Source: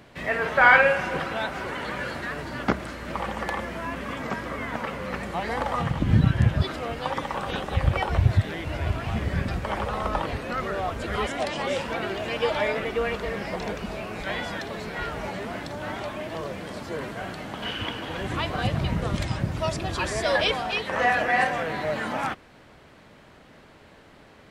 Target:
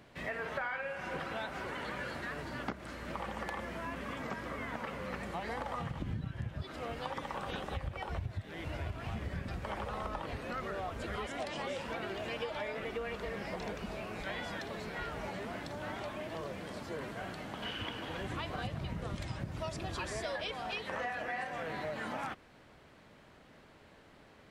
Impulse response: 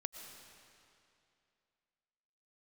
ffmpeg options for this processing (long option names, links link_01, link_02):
-af "acompressor=threshold=-27dB:ratio=10,volume=-7.5dB"